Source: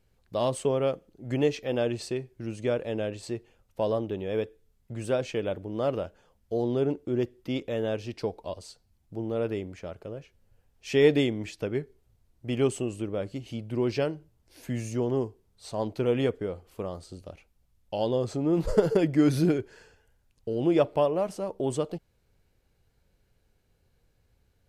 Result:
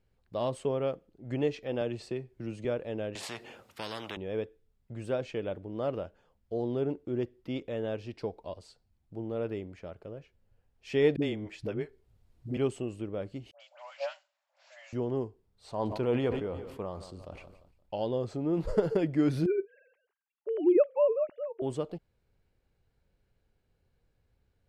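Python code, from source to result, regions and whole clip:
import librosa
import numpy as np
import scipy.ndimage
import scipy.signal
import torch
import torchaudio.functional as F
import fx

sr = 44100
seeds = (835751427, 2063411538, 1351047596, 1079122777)

y = fx.chain(x, sr, fx.notch(hz=1600.0, q=26.0),
    fx.band_squash(depth_pct=40), at=(1.81, 2.65))
y = fx.chain(y, sr, fx.highpass(hz=220.0, slope=12),
    fx.spectral_comp(ratio=4.0), at=(3.15, 4.17))
y = fx.chain(y, sr, fx.dispersion(late='highs', ms=58.0, hz=310.0),
    fx.band_squash(depth_pct=40), at=(11.16, 12.57))
y = fx.chain(y, sr, fx.cvsd(bps=64000),
    fx.brickwall_bandpass(low_hz=530.0, high_hz=7800.0),
    fx.dispersion(late='highs', ms=94.0, hz=1300.0), at=(13.51, 14.93))
y = fx.chain(y, sr, fx.peak_eq(hz=950.0, db=5.5, octaves=0.72),
    fx.echo_feedback(ms=174, feedback_pct=53, wet_db=-19.0),
    fx.sustainer(db_per_s=51.0), at=(15.68, 17.96))
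y = fx.chain(y, sr, fx.sine_speech(),
    fx.low_shelf(hz=420.0, db=7.5), at=(19.46, 21.62))
y = fx.high_shelf(y, sr, hz=6100.0, db=-11.5)
y = fx.notch(y, sr, hz=6100.0, q=20.0)
y = y * 10.0 ** (-4.5 / 20.0)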